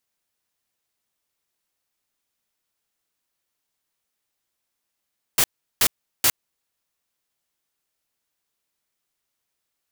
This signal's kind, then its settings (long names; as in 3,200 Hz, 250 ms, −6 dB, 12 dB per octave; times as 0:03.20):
noise bursts white, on 0.06 s, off 0.37 s, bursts 3, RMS −17 dBFS